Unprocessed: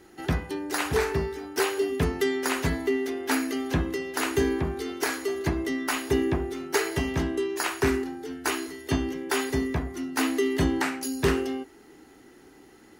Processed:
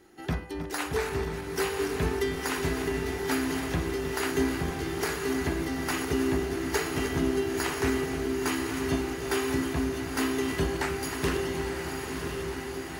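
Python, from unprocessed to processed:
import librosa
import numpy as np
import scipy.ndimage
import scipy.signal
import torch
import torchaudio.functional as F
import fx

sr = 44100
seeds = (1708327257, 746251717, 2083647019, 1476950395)

y = fx.reverse_delay_fb(x, sr, ms=157, feedback_pct=69, wet_db=-9.5)
y = fx.echo_diffused(y, sr, ms=986, feedback_pct=68, wet_db=-4.5)
y = y * librosa.db_to_amplitude(-4.5)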